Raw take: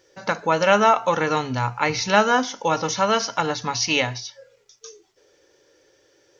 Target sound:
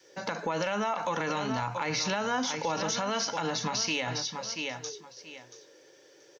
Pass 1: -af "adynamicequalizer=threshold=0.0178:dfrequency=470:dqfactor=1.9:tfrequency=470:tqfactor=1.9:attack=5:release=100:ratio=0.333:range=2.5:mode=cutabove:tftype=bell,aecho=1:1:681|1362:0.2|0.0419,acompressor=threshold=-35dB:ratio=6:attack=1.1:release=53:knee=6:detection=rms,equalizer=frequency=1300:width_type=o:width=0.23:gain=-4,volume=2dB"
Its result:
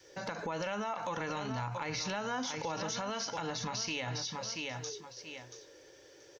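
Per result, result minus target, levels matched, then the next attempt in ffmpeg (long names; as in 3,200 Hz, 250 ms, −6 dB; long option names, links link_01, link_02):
downward compressor: peak gain reduction +5.5 dB; 125 Hz band +3.5 dB
-af "adynamicequalizer=threshold=0.0178:dfrequency=470:dqfactor=1.9:tfrequency=470:tqfactor=1.9:attack=5:release=100:ratio=0.333:range=2.5:mode=cutabove:tftype=bell,aecho=1:1:681|1362:0.2|0.0419,acompressor=threshold=-27dB:ratio=6:attack=1.1:release=53:knee=6:detection=rms,equalizer=frequency=1300:width_type=o:width=0.23:gain=-4,volume=2dB"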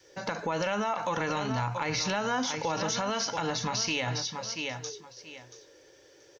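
125 Hz band +3.0 dB
-af "adynamicequalizer=threshold=0.0178:dfrequency=470:dqfactor=1.9:tfrequency=470:tqfactor=1.9:attack=5:release=100:ratio=0.333:range=2.5:mode=cutabove:tftype=bell,highpass=frequency=140:width=0.5412,highpass=frequency=140:width=1.3066,aecho=1:1:681|1362:0.2|0.0419,acompressor=threshold=-27dB:ratio=6:attack=1.1:release=53:knee=6:detection=rms,equalizer=frequency=1300:width_type=o:width=0.23:gain=-4,volume=2dB"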